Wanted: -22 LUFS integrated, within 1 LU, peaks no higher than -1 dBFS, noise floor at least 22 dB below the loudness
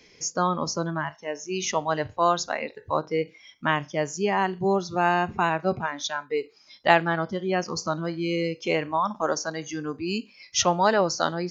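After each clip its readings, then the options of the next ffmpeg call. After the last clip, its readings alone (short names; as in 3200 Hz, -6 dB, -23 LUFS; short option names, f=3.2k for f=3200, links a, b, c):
loudness -26.0 LUFS; peak -3.5 dBFS; loudness target -22.0 LUFS
-> -af "volume=4dB,alimiter=limit=-1dB:level=0:latency=1"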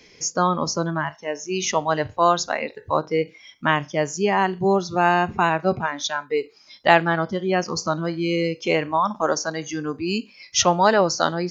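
loudness -22.0 LUFS; peak -1.0 dBFS; noise floor -52 dBFS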